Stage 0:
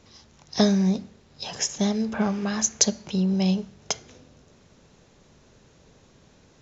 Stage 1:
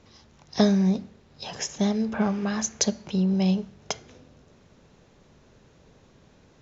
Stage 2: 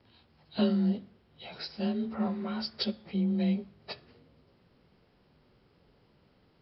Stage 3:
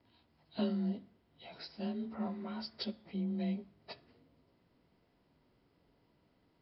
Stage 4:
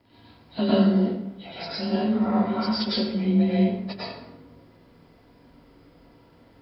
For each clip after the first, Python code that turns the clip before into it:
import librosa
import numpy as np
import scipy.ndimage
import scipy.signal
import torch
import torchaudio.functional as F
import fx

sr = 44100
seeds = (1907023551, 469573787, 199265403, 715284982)

y1 = fx.lowpass(x, sr, hz=3700.0, slope=6)
y2 = fx.partial_stretch(y1, sr, pct=91)
y2 = y2 * librosa.db_to_amplitude(-5.5)
y3 = fx.small_body(y2, sr, hz=(290.0, 670.0, 950.0, 2000.0), ring_ms=45, db=7)
y3 = y3 * librosa.db_to_amplitude(-8.5)
y4 = fx.rev_plate(y3, sr, seeds[0], rt60_s=0.9, hf_ratio=0.6, predelay_ms=90, drr_db=-8.0)
y4 = y4 * librosa.db_to_amplitude(8.5)